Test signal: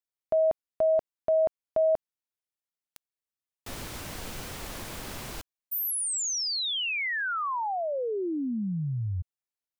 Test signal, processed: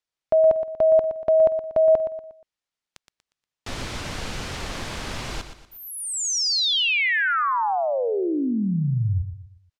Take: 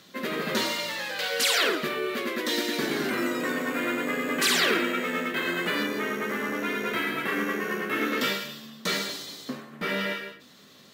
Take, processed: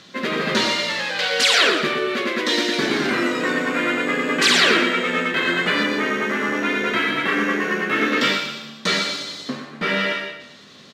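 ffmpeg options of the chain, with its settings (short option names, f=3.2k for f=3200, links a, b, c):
-filter_complex "[0:a]lowpass=6k,equalizer=f=390:t=o:w=3:g=-2.5,asplit=2[a][b];[b]aecho=0:1:119|238|357|476:0.316|0.12|0.0457|0.0174[c];[a][c]amix=inputs=2:normalize=0,volume=8.5dB"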